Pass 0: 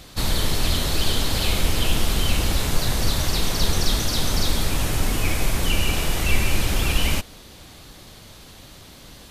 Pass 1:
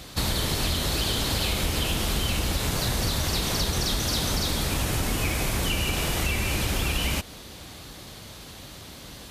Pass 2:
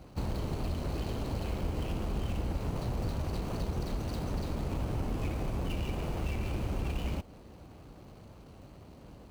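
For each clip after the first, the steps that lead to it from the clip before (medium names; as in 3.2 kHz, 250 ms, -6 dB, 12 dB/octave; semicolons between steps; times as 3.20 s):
high-pass 42 Hz; compression, threshold -24 dBFS, peak gain reduction 6.5 dB; trim +2 dB
median filter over 25 samples; trim -5.5 dB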